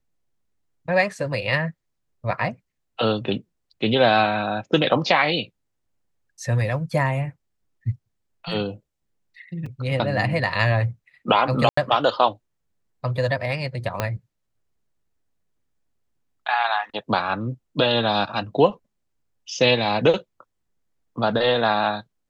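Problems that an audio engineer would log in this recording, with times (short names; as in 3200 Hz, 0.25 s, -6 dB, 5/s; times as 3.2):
9.66 gap 4.1 ms
11.69–11.77 gap 84 ms
14 pop -8 dBFS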